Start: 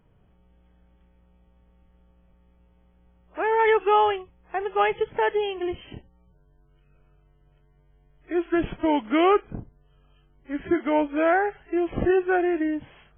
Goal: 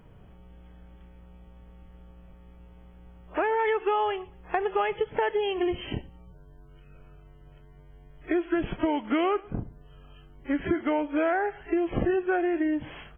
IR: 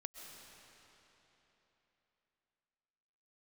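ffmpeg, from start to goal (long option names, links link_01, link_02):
-af "acompressor=threshold=-33dB:ratio=6,aecho=1:1:116|232:0.0631|0.0215,volume=9dB"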